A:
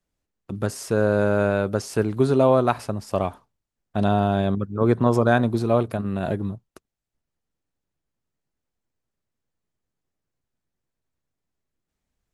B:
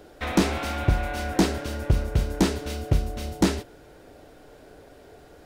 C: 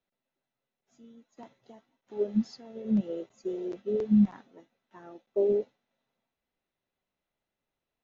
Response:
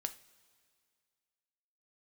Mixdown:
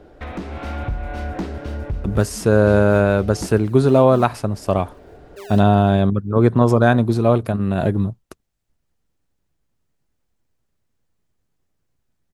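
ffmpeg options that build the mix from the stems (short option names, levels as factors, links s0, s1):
-filter_complex "[0:a]adelay=1550,volume=1.26[s0];[1:a]lowpass=f=1600:p=1,acompressor=threshold=0.02:ratio=3,volume=25.1,asoftclip=hard,volume=0.0398,volume=1.26[s1];[2:a]lowshelf=f=270:g=-8,acrusher=samples=29:mix=1:aa=0.000001:lfo=1:lforange=29:lforate=2.4,volume=0.224,asplit=2[s2][s3];[s3]apad=whole_len=240408[s4];[s1][s4]sidechaincompress=threshold=0.00224:ratio=8:attack=16:release=209[s5];[s0][s5][s2]amix=inputs=3:normalize=0,lowshelf=f=140:g=5.5,dynaudnorm=f=210:g=5:m=1.78"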